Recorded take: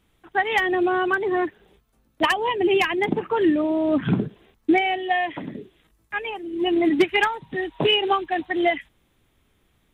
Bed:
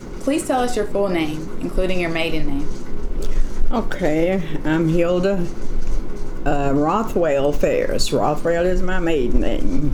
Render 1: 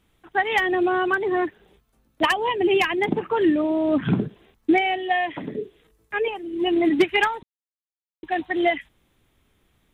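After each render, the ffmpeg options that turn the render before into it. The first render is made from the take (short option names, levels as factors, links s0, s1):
-filter_complex "[0:a]asettb=1/sr,asplit=3[s0][s1][s2];[s0]atrim=end=5.474[s3];[s1]atrim=start=5.47:end=6.28,asetpts=PTS-STARTPTS,afade=t=in:d=0.004:c=qsin,afade=t=out:st=0.806:d=0.004:c=qsin,equalizer=f=440:w=4.8:g=14[s4];[s2]atrim=start=6.276[s5];[s3][s4]acrossfade=d=0.004:c1=hsin:c2=qsin[s6];[s6][s5]acrossfade=d=0.004:c1=qsin:c2=hsin,asplit=3[s7][s8][s9];[s7]atrim=end=7.43,asetpts=PTS-STARTPTS,afade=t=out:st=7.426:d=0.004:c=hsin[s10];[s8]atrim=start=7.43:end=8.23,asetpts=PTS-STARTPTS,volume=0[s11];[s9]atrim=start=8.23,asetpts=PTS-STARTPTS,afade=t=in:d=0.004:c=hsin[s12];[s10][s11][s12]concat=n=3:v=0:a=1"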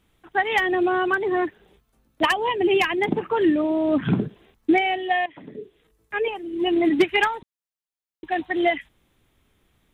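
-filter_complex "[0:a]asplit=2[s0][s1];[s0]atrim=end=5.26,asetpts=PTS-STARTPTS,afade=t=out:st=5.256:d=0.004:c=hsin:silence=0.188365[s2];[s1]atrim=start=5.26,asetpts=PTS-STARTPTS,afade=t=in:d=1:silence=0.188365[s3];[s2][s3]concat=n=2:v=0:a=1"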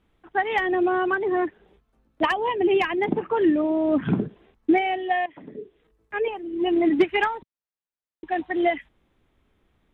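-af "lowpass=f=1700:p=1,equalizer=f=120:w=1.5:g=-4"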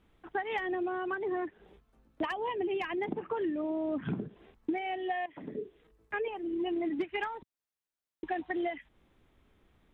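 -af "acompressor=threshold=0.0251:ratio=5"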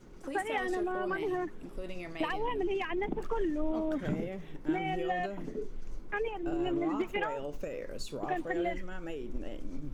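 -filter_complex "[1:a]volume=0.0891[s0];[0:a][s0]amix=inputs=2:normalize=0"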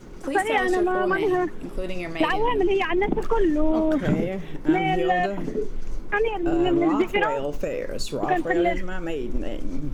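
-af "volume=3.55"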